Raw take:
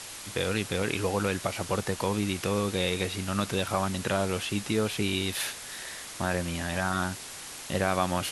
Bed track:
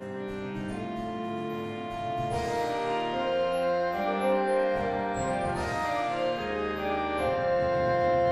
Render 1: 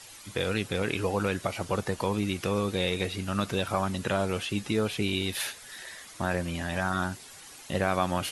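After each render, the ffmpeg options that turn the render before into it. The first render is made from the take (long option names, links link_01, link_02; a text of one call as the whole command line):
ffmpeg -i in.wav -af "afftdn=noise_reduction=10:noise_floor=-42" out.wav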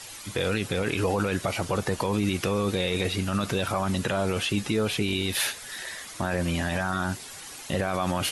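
ffmpeg -i in.wav -af "acontrast=56,alimiter=limit=-15dB:level=0:latency=1:release=20" out.wav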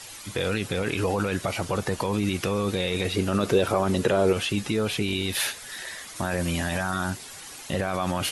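ffmpeg -i in.wav -filter_complex "[0:a]asettb=1/sr,asplit=3[link_01][link_02][link_03];[link_01]atrim=end=3.164[link_04];[link_02]atrim=start=3.16:end=4.33,asetpts=PTS-STARTPTS,afade=type=in:duration=0.004:curve=qsin,afade=type=out:start_time=1.166:duration=0.004:curve=qsin,equalizer=frequency=420:width=1.4:gain=11[link_05];[link_03]atrim=start=4.326[link_06];[link_04][link_05]acrossfade=duration=0.004:curve1=hsin:curve2=qsin[link_07];[link_07][link_06]acrossfade=duration=0.004:curve1=qsin:curve2=hsin,asettb=1/sr,asplit=3[link_08][link_09][link_10];[link_08]atrim=end=6.164[link_11];[link_09]atrim=start=6.16:end=7.1,asetpts=PTS-STARTPTS,afade=type=in:duration=0.004:curve=qsin,afade=type=out:start_time=0.936:duration=0.004:curve=qsin,highshelf=frequency=6800:gain=7.5[link_12];[link_10]atrim=start=7.096[link_13];[link_11][link_12]acrossfade=duration=0.004:curve1=hsin:curve2=qsin[link_14];[link_14][link_13]acrossfade=duration=0.004:curve1=qsin:curve2=hsin" out.wav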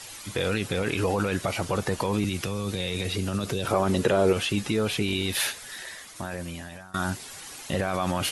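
ffmpeg -i in.wav -filter_complex "[0:a]asettb=1/sr,asplit=3[link_01][link_02][link_03];[link_01]atrim=end=2.244[link_04];[link_02]atrim=start=2.24:end=3.65,asetpts=PTS-STARTPTS,afade=type=in:duration=0.004:curve=qsin,afade=type=out:start_time=1.406:duration=0.004:curve=qsin,acrossover=split=180|3000[link_05][link_06][link_07];[link_06]acompressor=threshold=-30dB:ratio=6:attack=3.2:release=140:knee=2.83:detection=peak[link_08];[link_05][link_08][link_07]amix=inputs=3:normalize=0[link_09];[link_03]atrim=start=3.646[link_10];[link_04][link_09]acrossfade=duration=0.004:curve1=hsin:curve2=qsin[link_11];[link_11][link_10]acrossfade=duration=0.004:curve1=qsin:curve2=hsin,asplit=2[link_12][link_13];[link_12]atrim=end=6.94,asetpts=PTS-STARTPTS,afade=type=out:start_time=5.45:duration=1.49:silence=0.0707946[link_14];[link_13]atrim=start=6.94,asetpts=PTS-STARTPTS,afade=type=in:duration=0.004:curve=hsin:silence=0.0707946[link_15];[link_14][link_15]concat=n=2:v=0:a=1" out.wav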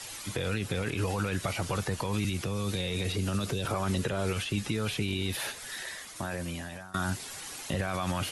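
ffmpeg -i in.wav -filter_complex "[0:a]acrossover=split=160|1200[link_01][link_02][link_03];[link_02]acompressor=threshold=-33dB:ratio=6[link_04];[link_03]alimiter=level_in=2dB:limit=-24dB:level=0:latency=1:release=168,volume=-2dB[link_05];[link_01][link_04][link_05]amix=inputs=3:normalize=0" out.wav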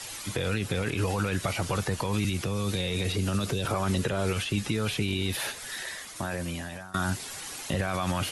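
ffmpeg -i in.wav -af "volume=2.5dB" out.wav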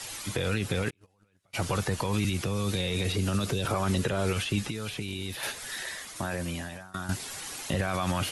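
ffmpeg -i in.wav -filter_complex "[0:a]asplit=3[link_01][link_02][link_03];[link_01]afade=type=out:start_time=0.89:duration=0.02[link_04];[link_02]agate=range=-41dB:threshold=-22dB:ratio=16:release=100:detection=peak,afade=type=in:start_time=0.89:duration=0.02,afade=type=out:start_time=1.53:duration=0.02[link_05];[link_03]afade=type=in:start_time=1.53:duration=0.02[link_06];[link_04][link_05][link_06]amix=inputs=3:normalize=0,asettb=1/sr,asplit=3[link_07][link_08][link_09];[link_07]atrim=end=4.654[link_10];[link_08]atrim=start=4.65:end=5.43,asetpts=PTS-STARTPTS,afade=type=in:duration=0.004:curve=qsin,afade=type=out:start_time=0.776:duration=0.004:curve=qsin,acrossover=split=2600|5300[link_11][link_12][link_13];[link_11]acompressor=threshold=-33dB:ratio=4[link_14];[link_12]acompressor=threshold=-43dB:ratio=4[link_15];[link_13]acompressor=threshold=-46dB:ratio=4[link_16];[link_14][link_15][link_16]amix=inputs=3:normalize=0[link_17];[link_09]atrim=start=5.426[link_18];[link_10][link_17]acrossfade=duration=0.004:curve1=hsin:curve2=qsin[link_19];[link_19][link_18]acrossfade=duration=0.004:curve1=qsin:curve2=hsin,asplit=2[link_20][link_21];[link_20]atrim=end=7.09,asetpts=PTS-STARTPTS,afade=type=out:start_time=6.62:duration=0.47:silence=0.298538[link_22];[link_21]atrim=start=7.09,asetpts=PTS-STARTPTS,afade=type=in:duration=0.004:curve=hsin:silence=0.298538[link_23];[link_22][link_23]concat=n=2:v=0:a=1" out.wav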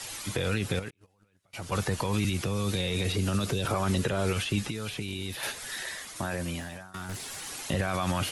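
ffmpeg -i in.wav -filter_complex "[0:a]asettb=1/sr,asplit=3[link_01][link_02][link_03];[link_01]atrim=end=0.794[link_04];[link_02]atrim=start=0.79:end=1.72,asetpts=PTS-STARTPTS,afade=type=in:duration=0.004:curve=qsin,afade=type=out:start_time=0.926:duration=0.004:curve=qsin,acompressor=threshold=-50dB:ratio=1.5:attack=3.2:release=140:knee=1:detection=peak[link_05];[link_03]atrim=start=1.716[link_06];[link_04][link_05]acrossfade=duration=0.004:curve1=hsin:curve2=qsin[link_07];[link_07][link_06]acrossfade=duration=0.004:curve1=qsin:curve2=hsin,asettb=1/sr,asplit=3[link_08][link_09][link_10];[link_08]atrim=end=6.604[link_11];[link_09]atrim=start=6.6:end=7.48,asetpts=PTS-STARTPTS,afade=type=in:duration=0.004:curve=qsin,afade=type=out:start_time=0.876:duration=0.004:curve=qsin,asoftclip=type=hard:threshold=-33.5dB[link_12];[link_10]atrim=start=7.476[link_13];[link_11][link_12]acrossfade=duration=0.004:curve1=hsin:curve2=qsin[link_14];[link_14][link_13]acrossfade=duration=0.004:curve1=qsin:curve2=hsin" out.wav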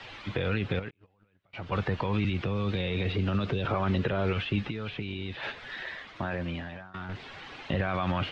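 ffmpeg -i in.wav -af "lowpass=frequency=3300:width=0.5412,lowpass=frequency=3300:width=1.3066" out.wav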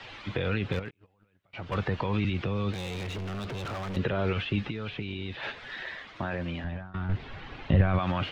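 ffmpeg -i in.wav -filter_complex "[0:a]asettb=1/sr,asplit=3[link_01][link_02][link_03];[link_01]atrim=end=0.724[link_04];[link_02]atrim=start=0.72:end=1.75,asetpts=PTS-STARTPTS,afade=type=in:duration=0.004:curve=qsin,afade=type=out:start_time=1.026:duration=0.004:curve=qsin,aeval=exprs='clip(val(0),-1,0.0335)':channel_layout=same[link_05];[link_03]atrim=start=1.746[link_06];[link_04][link_05]acrossfade=duration=0.004:curve1=hsin:curve2=qsin[link_07];[link_07][link_06]acrossfade=duration=0.004:curve1=qsin:curve2=hsin,asettb=1/sr,asplit=3[link_08][link_09][link_10];[link_08]atrim=end=2.734[link_11];[link_09]atrim=start=2.73:end=3.97,asetpts=PTS-STARTPTS,afade=type=in:duration=0.004:curve=qsin,afade=type=out:start_time=1.236:duration=0.004:curve=qsin,volume=33dB,asoftclip=hard,volume=-33dB[link_12];[link_10]atrim=start=3.966[link_13];[link_11][link_12]acrossfade=duration=0.004:curve1=hsin:curve2=qsin[link_14];[link_14][link_13]acrossfade=duration=0.004:curve1=qsin:curve2=hsin,asettb=1/sr,asplit=3[link_15][link_16][link_17];[link_15]atrim=end=6.644[link_18];[link_16]atrim=start=6.64:end=7.99,asetpts=PTS-STARTPTS,afade=type=in:duration=0.004:curve=qsin,afade=type=out:start_time=1.346:duration=0.004:curve=qsin,aemphasis=mode=reproduction:type=bsi[link_19];[link_17]atrim=start=7.986[link_20];[link_18][link_19]acrossfade=duration=0.004:curve1=hsin:curve2=qsin[link_21];[link_21][link_20]acrossfade=duration=0.004:curve1=qsin:curve2=hsin" out.wav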